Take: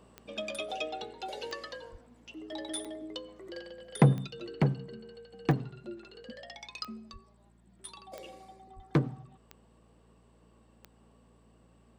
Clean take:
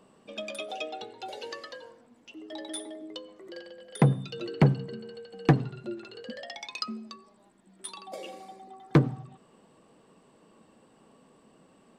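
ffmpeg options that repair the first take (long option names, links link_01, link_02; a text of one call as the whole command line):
ffmpeg -i in.wav -filter_complex "[0:a]adeclick=threshold=4,bandreject=frequency=57.2:width_type=h:width=4,bandreject=frequency=114.4:width_type=h:width=4,bandreject=frequency=171.6:width_type=h:width=4,bandreject=frequency=228.8:width_type=h:width=4,asplit=3[link_01][link_02][link_03];[link_01]afade=type=out:start_time=1.91:duration=0.02[link_04];[link_02]highpass=frequency=140:width=0.5412,highpass=frequency=140:width=1.3066,afade=type=in:start_time=1.91:duration=0.02,afade=type=out:start_time=2.03:duration=0.02[link_05];[link_03]afade=type=in:start_time=2.03:duration=0.02[link_06];[link_04][link_05][link_06]amix=inputs=3:normalize=0,asplit=3[link_07][link_08][link_09];[link_07]afade=type=out:start_time=7.12:duration=0.02[link_10];[link_08]highpass=frequency=140:width=0.5412,highpass=frequency=140:width=1.3066,afade=type=in:start_time=7.12:duration=0.02,afade=type=out:start_time=7.24:duration=0.02[link_11];[link_09]afade=type=in:start_time=7.24:duration=0.02[link_12];[link_10][link_11][link_12]amix=inputs=3:normalize=0,asplit=3[link_13][link_14][link_15];[link_13]afade=type=out:start_time=8.75:duration=0.02[link_16];[link_14]highpass=frequency=140:width=0.5412,highpass=frequency=140:width=1.3066,afade=type=in:start_time=8.75:duration=0.02,afade=type=out:start_time=8.87:duration=0.02[link_17];[link_15]afade=type=in:start_time=8.87:duration=0.02[link_18];[link_16][link_17][link_18]amix=inputs=3:normalize=0,asetnsamples=nb_out_samples=441:pad=0,asendcmd='4.27 volume volume 6dB',volume=0dB" out.wav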